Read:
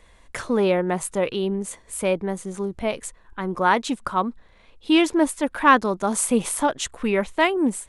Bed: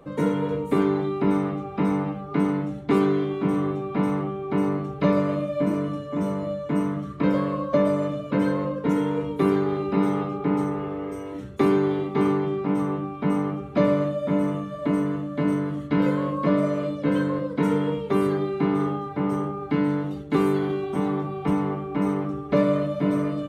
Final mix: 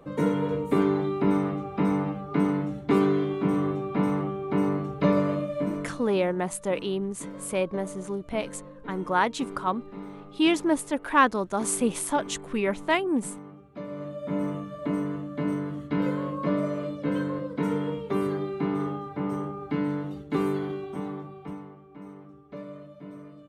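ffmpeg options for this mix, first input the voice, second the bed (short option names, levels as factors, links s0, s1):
-filter_complex "[0:a]adelay=5500,volume=0.596[s0];[1:a]volume=3.76,afade=t=out:st=5.27:d=0.96:silence=0.149624,afade=t=in:st=13.88:d=0.56:silence=0.223872,afade=t=out:st=20.48:d=1.24:silence=0.177828[s1];[s0][s1]amix=inputs=2:normalize=0"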